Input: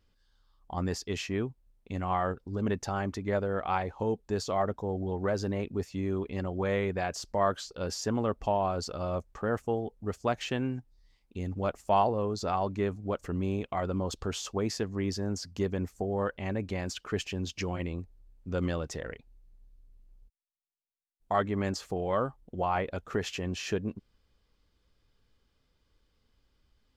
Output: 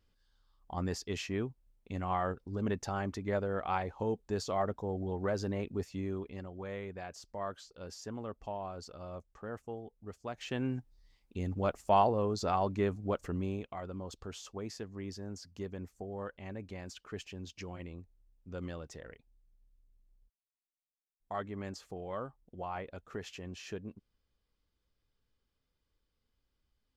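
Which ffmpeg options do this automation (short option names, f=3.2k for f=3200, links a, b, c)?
-af "volume=7.5dB,afade=t=out:st=5.88:d=0.61:silence=0.375837,afade=t=in:st=10.33:d=0.41:silence=0.281838,afade=t=out:st=13.12:d=0.66:silence=0.334965"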